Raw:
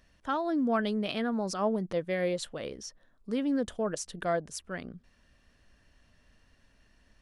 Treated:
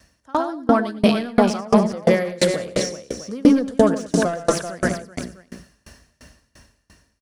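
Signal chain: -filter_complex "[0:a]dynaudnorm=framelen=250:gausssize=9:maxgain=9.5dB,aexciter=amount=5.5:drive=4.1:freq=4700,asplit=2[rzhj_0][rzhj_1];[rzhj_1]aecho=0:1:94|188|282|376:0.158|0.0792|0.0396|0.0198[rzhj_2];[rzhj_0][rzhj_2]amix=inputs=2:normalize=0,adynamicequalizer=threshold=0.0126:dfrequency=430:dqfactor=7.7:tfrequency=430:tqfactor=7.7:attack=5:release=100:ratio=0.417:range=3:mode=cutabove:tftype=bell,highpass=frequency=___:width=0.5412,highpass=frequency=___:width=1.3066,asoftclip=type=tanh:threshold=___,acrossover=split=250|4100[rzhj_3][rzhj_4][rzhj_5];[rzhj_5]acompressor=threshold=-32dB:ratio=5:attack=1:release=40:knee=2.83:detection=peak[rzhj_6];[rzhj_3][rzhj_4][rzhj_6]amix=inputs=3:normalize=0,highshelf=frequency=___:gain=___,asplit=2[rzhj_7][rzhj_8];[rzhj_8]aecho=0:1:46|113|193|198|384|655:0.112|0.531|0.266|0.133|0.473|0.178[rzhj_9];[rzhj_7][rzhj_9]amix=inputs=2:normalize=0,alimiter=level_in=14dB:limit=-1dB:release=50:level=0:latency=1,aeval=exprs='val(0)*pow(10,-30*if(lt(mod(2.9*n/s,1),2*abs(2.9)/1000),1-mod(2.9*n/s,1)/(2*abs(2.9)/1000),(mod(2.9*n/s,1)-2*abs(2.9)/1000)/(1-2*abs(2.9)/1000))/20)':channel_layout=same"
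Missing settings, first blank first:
45, 45, -12.5dB, 4000, -9.5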